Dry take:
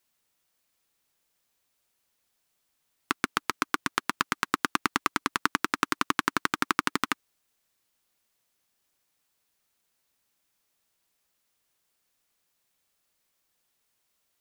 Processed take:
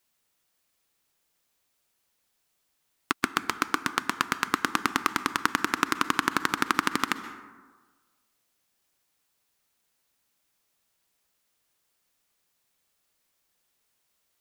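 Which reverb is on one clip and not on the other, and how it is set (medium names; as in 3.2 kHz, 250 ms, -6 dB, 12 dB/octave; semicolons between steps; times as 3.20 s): plate-style reverb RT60 1.4 s, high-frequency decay 0.4×, pre-delay 115 ms, DRR 12 dB; trim +1 dB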